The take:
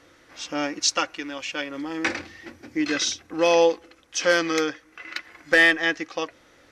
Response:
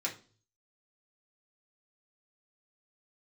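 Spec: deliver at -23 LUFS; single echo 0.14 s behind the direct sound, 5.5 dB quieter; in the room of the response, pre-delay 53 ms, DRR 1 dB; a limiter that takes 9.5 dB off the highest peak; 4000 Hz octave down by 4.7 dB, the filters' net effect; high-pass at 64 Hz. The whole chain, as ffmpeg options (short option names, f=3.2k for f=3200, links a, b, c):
-filter_complex "[0:a]highpass=64,equalizer=f=4k:t=o:g=-6.5,alimiter=limit=-17dB:level=0:latency=1,aecho=1:1:140:0.531,asplit=2[a][b];[1:a]atrim=start_sample=2205,adelay=53[c];[b][c]afir=irnorm=-1:irlink=0,volume=-4.5dB[d];[a][d]amix=inputs=2:normalize=0,volume=3dB"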